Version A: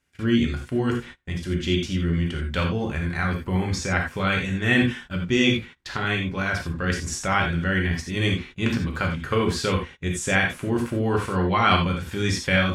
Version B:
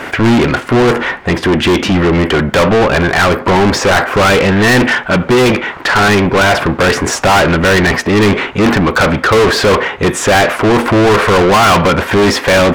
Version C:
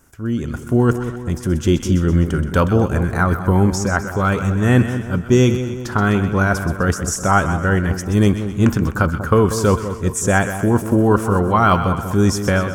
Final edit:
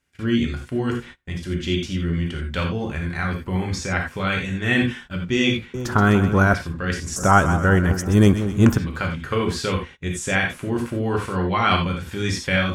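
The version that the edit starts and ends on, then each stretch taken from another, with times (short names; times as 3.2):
A
5.74–6.54 from C
7.16–8.78 from C
not used: B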